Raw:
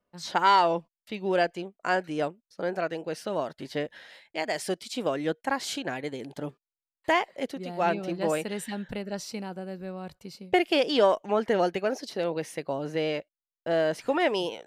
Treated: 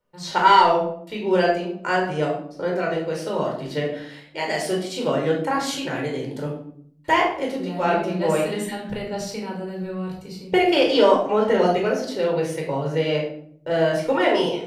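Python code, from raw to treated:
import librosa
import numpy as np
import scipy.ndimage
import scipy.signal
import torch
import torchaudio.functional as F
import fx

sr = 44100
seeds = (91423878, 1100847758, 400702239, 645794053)

y = fx.room_shoebox(x, sr, seeds[0], volume_m3=990.0, walls='furnished', distance_m=4.6)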